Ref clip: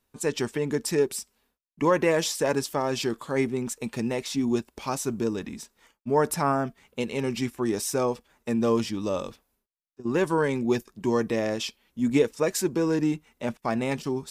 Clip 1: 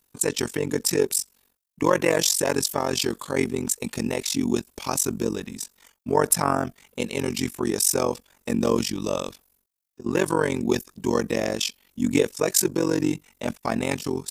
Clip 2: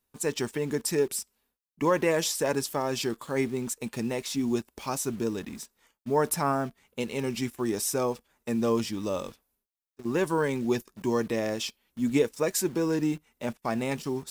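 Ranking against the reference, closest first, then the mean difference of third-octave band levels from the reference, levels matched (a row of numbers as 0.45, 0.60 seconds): 2, 1; 2.0, 4.0 decibels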